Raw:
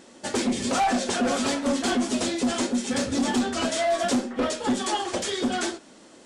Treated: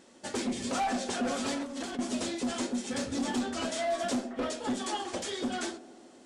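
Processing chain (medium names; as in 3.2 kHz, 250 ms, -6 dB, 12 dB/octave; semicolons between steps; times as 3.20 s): feedback echo behind a band-pass 82 ms, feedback 80%, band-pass 440 Hz, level -16.5 dB; 1.57–1.99 s: compressor with a negative ratio -30 dBFS, ratio -1; trim -7.5 dB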